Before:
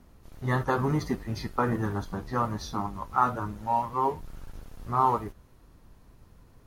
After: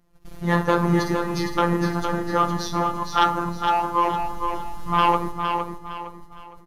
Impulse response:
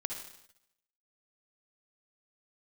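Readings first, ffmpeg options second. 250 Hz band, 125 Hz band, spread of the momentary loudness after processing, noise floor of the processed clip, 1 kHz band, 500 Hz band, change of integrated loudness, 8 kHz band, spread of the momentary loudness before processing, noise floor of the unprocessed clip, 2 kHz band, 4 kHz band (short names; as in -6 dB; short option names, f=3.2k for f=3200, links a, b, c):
+7.5 dB, +4.0 dB, 11 LU, -46 dBFS, +6.5 dB, +7.5 dB, +6.0 dB, +9.0 dB, 15 LU, -57 dBFS, +9.0 dB, +14.0 dB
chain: -filter_complex "[0:a]aresample=32000,aresample=44100,agate=range=-17dB:threshold=-51dB:ratio=16:detection=peak,asplit=2[a][b];[1:a]atrim=start_sample=2205[c];[b][c]afir=irnorm=-1:irlink=0,volume=-10.5dB[d];[a][d]amix=inputs=2:normalize=0,aeval=exprs='0.422*sin(PI/2*2.24*val(0)/0.422)':c=same,afftfilt=real='hypot(re,im)*cos(PI*b)':imag='0':win_size=1024:overlap=0.75,aecho=1:1:461|922|1383|1844:0.501|0.17|0.0579|0.0197,volume=-1dB"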